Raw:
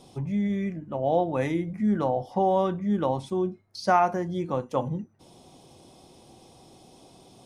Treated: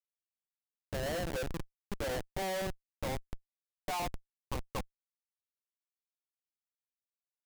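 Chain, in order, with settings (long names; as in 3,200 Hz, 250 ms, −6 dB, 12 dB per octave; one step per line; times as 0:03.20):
band-pass filter sweep 580 Hz → 1,200 Hz, 0:02.16–0:04.98
comparator with hysteresis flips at −31 dBFS
level −1.5 dB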